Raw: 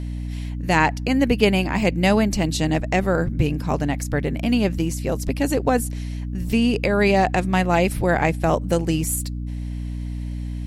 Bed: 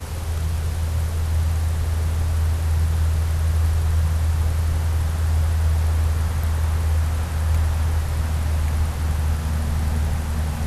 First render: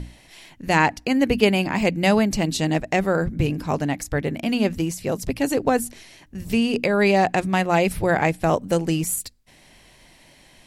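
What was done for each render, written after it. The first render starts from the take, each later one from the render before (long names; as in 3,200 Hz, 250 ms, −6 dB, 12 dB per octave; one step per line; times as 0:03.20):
mains-hum notches 60/120/180/240/300 Hz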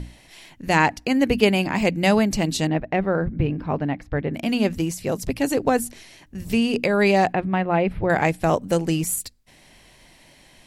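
0:02.67–0:04.34: high-frequency loss of the air 380 metres
0:07.33–0:08.10: high-frequency loss of the air 450 metres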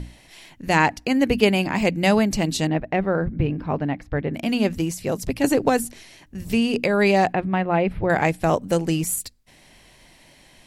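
0:05.44–0:05.85: multiband upward and downward compressor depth 100%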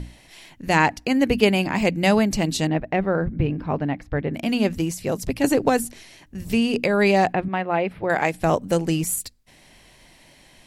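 0:07.48–0:08.34: high-pass filter 340 Hz 6 dB per octave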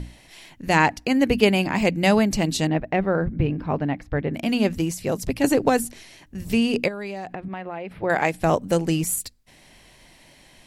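0:06.88–0:07.99: downward compressor 10 to 1, threshold −28 dBFS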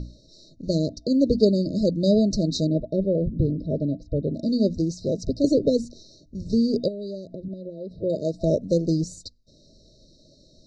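brick-wall band-stop 660–3,700 Hz
Butterworth low-pass 6,000 Hz 36 dB per octave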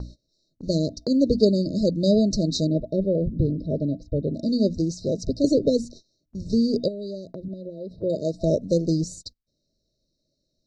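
noise gate −41 dBFS, range −21 dB
high-shelf EQ 4,800 Hz +3.5 dB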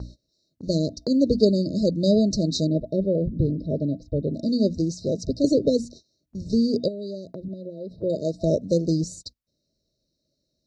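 high-pass filter 43 Hz
dynamic equaliser 780 Hz, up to −3 dB, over −49 dBFS, Q 7.2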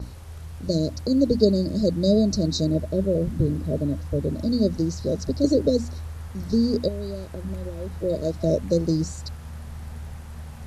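mix in bed −14.5 dB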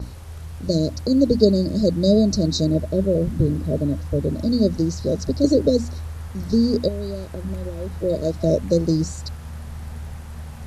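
level +3 dB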